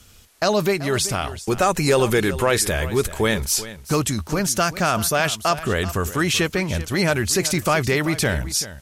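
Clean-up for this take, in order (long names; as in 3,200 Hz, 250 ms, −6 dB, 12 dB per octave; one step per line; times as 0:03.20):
downward expander −28 dBFS, range −21 dB
echo removal 384 ms −15 dB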